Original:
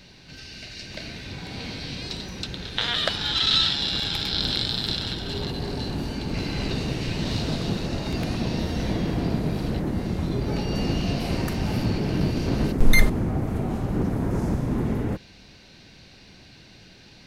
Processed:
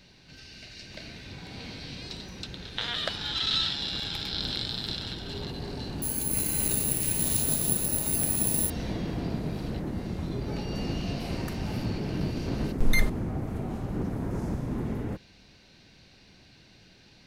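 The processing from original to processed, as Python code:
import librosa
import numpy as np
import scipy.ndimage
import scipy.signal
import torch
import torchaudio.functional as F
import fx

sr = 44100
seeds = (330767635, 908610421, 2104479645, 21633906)

y = fx.resample_bad(x, sr, factor=4, down='none', up='zero_stuff', at=(6.02, 8.7))
y = F.gain(torch.from_numpy(y), -6.5).numpy()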